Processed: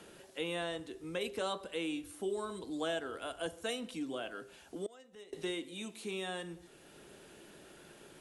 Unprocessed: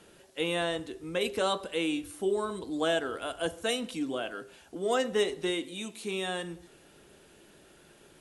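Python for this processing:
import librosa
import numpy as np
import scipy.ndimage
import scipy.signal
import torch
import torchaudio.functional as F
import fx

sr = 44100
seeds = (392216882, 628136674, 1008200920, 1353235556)

y = fx.gate_flip(x, sr, shuts_db=-27.0, range_db=-24, at=(4.86, 5.33))
y = fx.band_squash(y, sr, depth_pct=40)
y = y * librosa.db_to_amplitude(-7.0)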